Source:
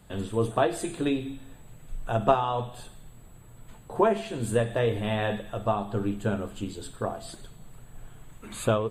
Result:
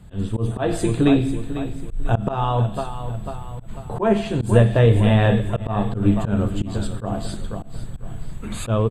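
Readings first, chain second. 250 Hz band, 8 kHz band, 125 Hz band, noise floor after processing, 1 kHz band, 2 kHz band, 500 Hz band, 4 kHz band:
+10.5 dB, no reading, +13.5 dB, -36 dBFS, +2.0 dB, +5.0 dB, +4.5 dB, +5.0 dB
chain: tone controls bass +10 dB, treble 0 dB; on a send: feedback delay 495 ms, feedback 42%, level -12.5 dB; on the sum: level rider gain up to 5 dB; slow attack 140 ms; treble shelf 10 kHz -9 dB; trim +2.5 dB

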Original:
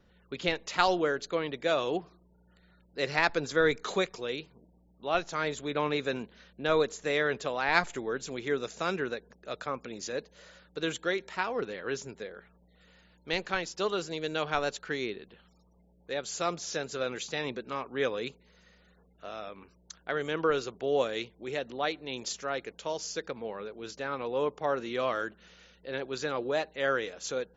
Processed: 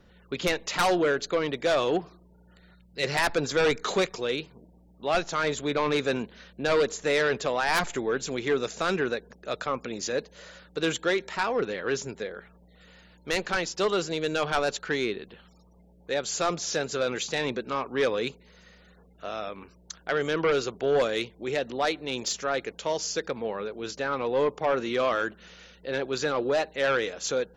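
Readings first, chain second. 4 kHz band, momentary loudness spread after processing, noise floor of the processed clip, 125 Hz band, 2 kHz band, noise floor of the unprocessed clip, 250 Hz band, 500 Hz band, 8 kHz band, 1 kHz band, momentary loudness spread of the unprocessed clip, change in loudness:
+4.5 dB, 10 LU, -57 dBFS, +4.5 dB, +3.0 dB, -64 dBFS, +4.5 dB, +4.5 dB, no reading, +3.5 dB, 12 LU, +4.0 dB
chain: time-frequency box 2.74–3.04 s, 220–1900 Hz -8 dB; in parallel at -7 dB: sine folder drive 14 dB, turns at -8 dBFS; on the sum: trim -6.5 dB

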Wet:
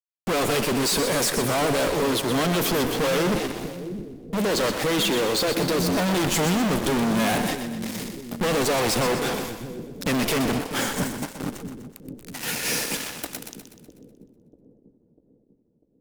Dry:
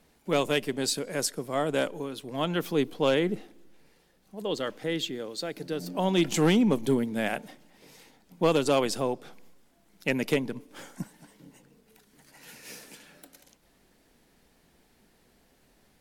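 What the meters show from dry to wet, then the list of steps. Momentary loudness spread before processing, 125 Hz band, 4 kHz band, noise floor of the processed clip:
18 LU, +6.0 dB, +8.0 dB, -64 dBFS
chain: time-frequency box 11.64–12.23 s, 750–7100 Hz -9 dB; fuzz box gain 53 dB, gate -50 dBFS; two-band feedback delay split 430 Hz, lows 646 ms, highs 124 ms, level -8.5 dB; trim -8.5 dB

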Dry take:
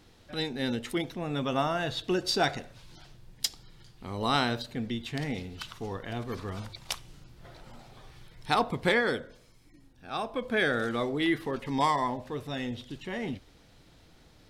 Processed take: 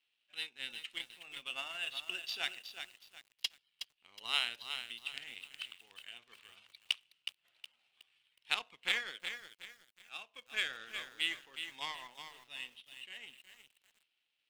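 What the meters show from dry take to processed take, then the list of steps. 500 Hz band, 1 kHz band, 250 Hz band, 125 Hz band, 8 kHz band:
-25.5 dB, -18.5 dB, -31.5 dB, under -30 dB, -9.0 dB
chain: band-pass filter 2.8 kHz, Q 5.8; power-law waveshaper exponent 1.4; bit-crushed delay 367 ms, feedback 35%, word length 11-bit, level -8 dB; trim +10 dB

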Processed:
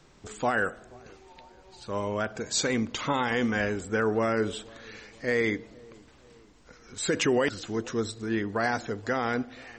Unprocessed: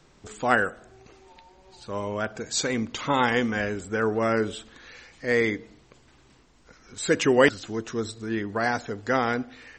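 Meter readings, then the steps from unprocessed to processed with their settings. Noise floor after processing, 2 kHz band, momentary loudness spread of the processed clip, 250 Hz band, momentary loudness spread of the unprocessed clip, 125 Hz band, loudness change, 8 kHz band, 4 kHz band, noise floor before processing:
-56 dBFS, -3.5 dB, 12 LU, -2.0 dB, 12 LU, -1.5 dB, -3.0 dB, -0.5 dB, -1.5 dB, -58 dBFS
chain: peak limiter -15.5 dBFS, peak gain reduction 10.5 dB; on a send: feedback echo behind a low-pass 480 ms, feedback 49%, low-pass 950 Hz, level -23.5 dB

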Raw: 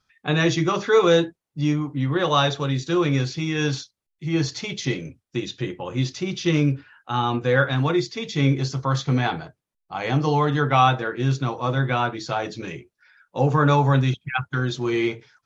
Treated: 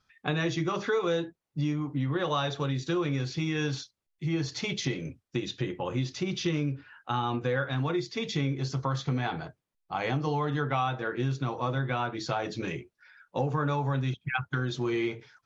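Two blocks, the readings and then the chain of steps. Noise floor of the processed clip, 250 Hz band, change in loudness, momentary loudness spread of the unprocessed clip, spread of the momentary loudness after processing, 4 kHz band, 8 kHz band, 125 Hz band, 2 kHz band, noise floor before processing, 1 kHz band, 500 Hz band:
-81 dBFS, -7.5 dB, -8.5 dB, 12 LU, 6 LU, -7.5 dB, no reading, -8.0 dB, -7.5 dB, -81 dBFS, -9.0 dB, -8.5 dB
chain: treble shelf 6.5 kHz -6 dB; compression 4:1, threshold -27 dBFS, peak gain reduction 12.5 dB

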